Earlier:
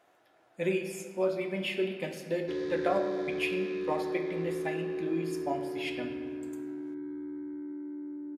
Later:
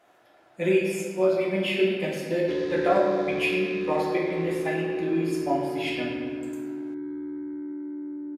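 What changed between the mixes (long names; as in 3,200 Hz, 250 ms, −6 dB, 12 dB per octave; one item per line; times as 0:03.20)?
speech: send +11.5 dB
background +5.0 dB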